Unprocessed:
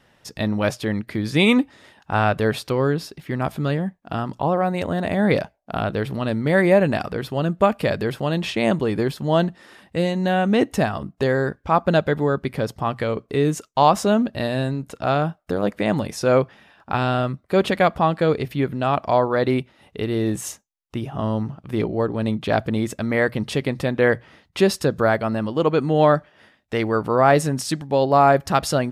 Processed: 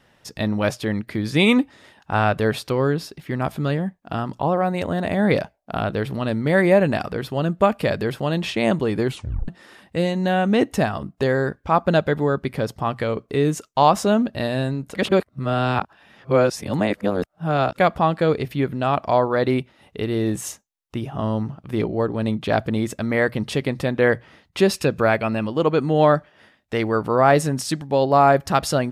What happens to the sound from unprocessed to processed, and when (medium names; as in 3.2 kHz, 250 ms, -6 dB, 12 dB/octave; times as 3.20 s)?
9.07 s: tape stop 0.41 s
14.95–17.78 s: reverse
24.73–25.47 s: peaking EQ 2.5 kHz +13.5 dB 0.28 oct